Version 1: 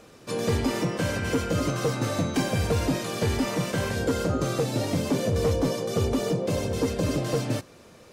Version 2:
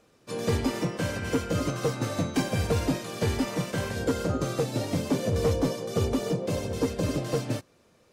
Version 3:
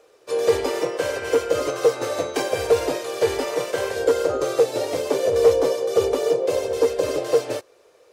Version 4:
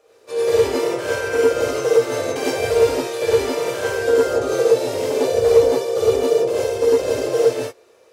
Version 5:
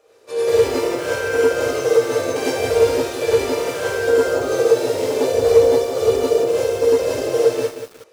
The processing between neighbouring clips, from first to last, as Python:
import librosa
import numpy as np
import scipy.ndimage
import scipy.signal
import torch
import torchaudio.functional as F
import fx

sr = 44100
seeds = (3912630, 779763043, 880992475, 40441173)

y1 = fx.upward_expand(x, sr, threshold_db=-43.0, expansion=1.5)
y2 = fx.low_shelf_res(y1, sr, hz=300.0, db=-13.0, q=3.0)
y2 = y2 * 10.0 ** (4.5 / 20.0)
y3 = fx.rev_gated(y2, sr, seeds[0], gate_ms=130, shape='rising', drr_db=-6.0)
y3 = y3 * 10.0 ** (-4.5 / 20.0)
y4 = fx.echo_crushed(y3, sr, ms=183, feedback_pct=35, bits=6, wet_db=-8.5)